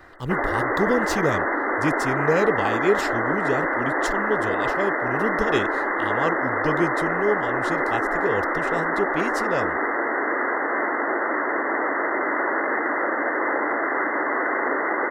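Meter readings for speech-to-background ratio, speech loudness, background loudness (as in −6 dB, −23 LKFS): −4.0 dB, −27.5 LKFS, −23.5 LKFS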